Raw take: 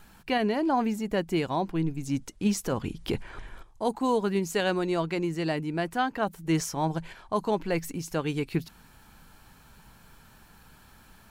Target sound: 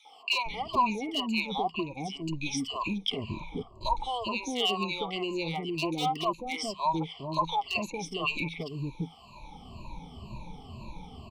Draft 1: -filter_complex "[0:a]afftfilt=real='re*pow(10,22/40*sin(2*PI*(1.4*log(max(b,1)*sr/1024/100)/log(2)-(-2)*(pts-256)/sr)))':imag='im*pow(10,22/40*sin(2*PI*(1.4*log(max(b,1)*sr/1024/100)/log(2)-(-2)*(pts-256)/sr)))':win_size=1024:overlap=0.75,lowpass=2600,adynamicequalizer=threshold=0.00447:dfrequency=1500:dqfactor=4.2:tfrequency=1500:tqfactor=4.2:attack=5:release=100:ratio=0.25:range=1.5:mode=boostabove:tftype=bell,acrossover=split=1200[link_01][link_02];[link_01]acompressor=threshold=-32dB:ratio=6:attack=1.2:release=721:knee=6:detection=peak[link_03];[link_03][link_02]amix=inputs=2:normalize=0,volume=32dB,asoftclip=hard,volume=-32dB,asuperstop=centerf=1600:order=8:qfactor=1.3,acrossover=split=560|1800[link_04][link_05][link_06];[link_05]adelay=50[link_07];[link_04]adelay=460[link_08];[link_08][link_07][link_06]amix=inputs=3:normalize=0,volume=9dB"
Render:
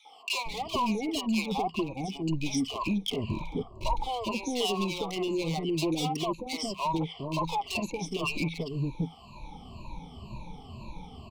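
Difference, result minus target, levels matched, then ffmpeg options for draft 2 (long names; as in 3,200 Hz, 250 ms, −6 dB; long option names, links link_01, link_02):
gain into a clipping stage and back: distortion +13 dB; downward compressor: peak gain reduction −5.5 dB
-filter_complex "[0:a]afftfilt=real='re*pow(10,22/40*sin(2*PI*(1.4*log(max(b,1)*sr/1024/100)/log(2)-(-2)*(pts-256)/sr)))':imag='im*pow(10,22/40*sin(2*PI*(1.4*log(max(b,1)*sr/1024/100)/log(2)-(-2)*(pts-256)/sr)))':win_size=1024:overlap=0.75,lowpass=2600,adynamicequalizer=threshold=0.00447:dfrequency=1500:dqfactor=4.2:tfrequency=1500:tqfactor=4.2:attack=5:release=100:ratio=0.25:range=1.5:mode=boostabove:tftype=bell,acrossover=split=1200[link_01][link_02];[link_01]acompressor=threshold=-38.5dB:ratio=6:attack=1.2:release=721:knee=6:detection=peak[link_03];[link_03][link_02]amix=inputs=2:normalize=0,volume=23dB,asoftclip=hard,volume=-23dB,asuperstop=centerf=1600:order=8:qfactor=1.3,acrossover=split=560|1800[link_04][link_05][link_06];[link_05]adelay=50[link_07];[link_04]adelay=460[link_08];[link_08][link_07][link_06]amix=inputs=3:normalize=0,volume=9dB"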